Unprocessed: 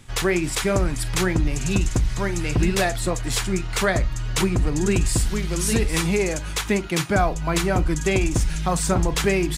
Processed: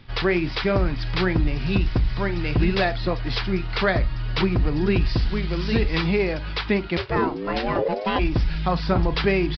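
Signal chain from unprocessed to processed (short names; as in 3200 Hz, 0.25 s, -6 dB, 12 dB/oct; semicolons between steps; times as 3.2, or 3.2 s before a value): 6.96–8.18 ring modulator 230 Hz -> 650 Hz; downsampling 11025 Hz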